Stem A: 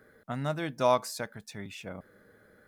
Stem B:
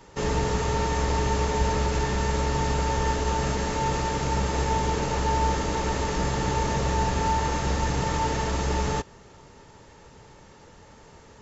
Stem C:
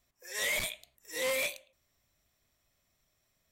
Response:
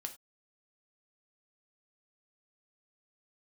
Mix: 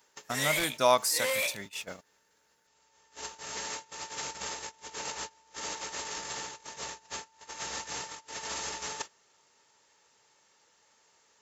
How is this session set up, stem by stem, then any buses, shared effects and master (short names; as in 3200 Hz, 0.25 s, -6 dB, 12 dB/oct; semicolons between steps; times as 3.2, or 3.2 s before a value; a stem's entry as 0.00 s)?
+1.0 dB, 0.00 s, send -21 dB, high shelf 3100 Hz +11 dB
-4.0 dB, 0.00 s, send -22.5 dB, tilt +3.5 dB/oct; negative-ratio compressor -32 dBFS, ratio -0.5; auto duck -16 dB, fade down 0.55 s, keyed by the first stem
+0.5 dB, 0.00 s, send -10.5 dB, dry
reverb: on, pre-delay 3 ms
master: gate -37 dBFS, range -19 dB; low shelf 240 Hz -10 dB